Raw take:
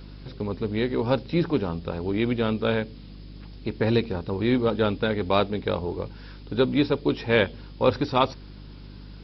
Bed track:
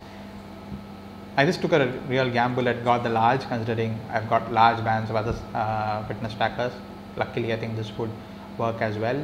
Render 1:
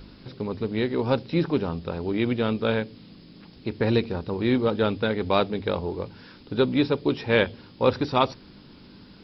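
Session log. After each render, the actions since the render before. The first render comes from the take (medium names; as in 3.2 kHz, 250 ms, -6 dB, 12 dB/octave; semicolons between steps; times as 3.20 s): de-hum 50 Hz, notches 3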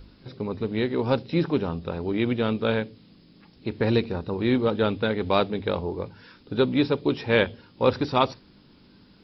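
noise print and reduce 6 dB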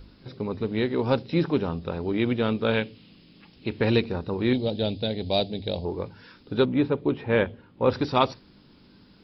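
2.73–4.00 s: peaking EQ 2.8 kHz +11 dB -> +5 dB; 4.53–5.85 s: FFT filter 120 Hz 0 dB, 450 Hz -6 dB, 670 Hz +1 dB, 1.2 kHz -22 dB, 1.7 kHz -13 dB, 4.5 kHz +8 dB, 7 kHz -10 dB; 6.65–7.90 s: distance through air 420 m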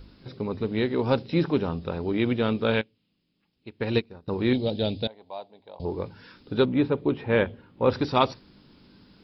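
2.81–4.28 s: upward expansion 2.5:1, over -32 dBFS; 5.07–5.80 s: band-pass filter 1 kHz, Q 4.2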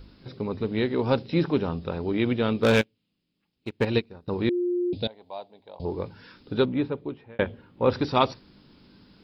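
2.63–3.85 s: waveshaping leveller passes 2; 4.49–4.93 s: bleep 354 Hz -22.5 dBFS; 6.53–7.39 s: fade out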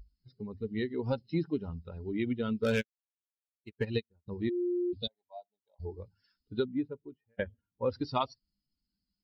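expander on every frequency bin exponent 2; compression 2.5:1, threshold -29 dBFS, peak gain reduction 8.5 dB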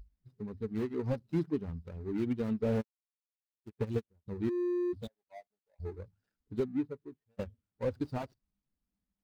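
median filter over 41 samples; slew-rate limiter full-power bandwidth 25 Hz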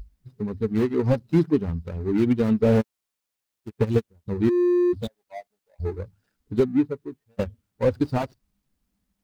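trim +12 dB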